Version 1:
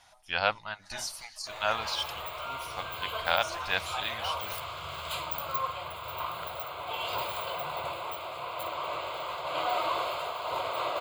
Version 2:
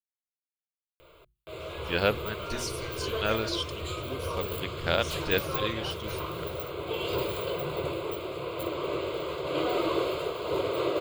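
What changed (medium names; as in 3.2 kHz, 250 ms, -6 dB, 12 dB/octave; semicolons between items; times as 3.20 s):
speech: entry +1.60 s; master: add resonant low shelf 560 Hz +11 dB, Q 3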